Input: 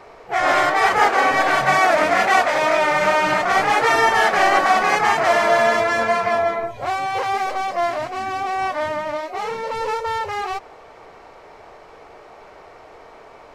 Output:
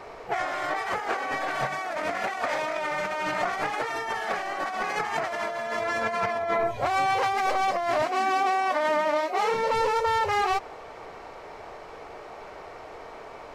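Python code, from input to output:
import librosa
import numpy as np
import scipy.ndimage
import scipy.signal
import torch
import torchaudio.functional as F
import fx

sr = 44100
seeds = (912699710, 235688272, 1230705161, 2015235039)

y = fx.highpass(x, sr, hz=210.0, slope=24, at=(8.02, 9.54))
y = fx.over_compress(y, sr, threshold_db=-24.0, ratio=-1.0)
y = y * 10.0 ** (-3.5 / 20.0)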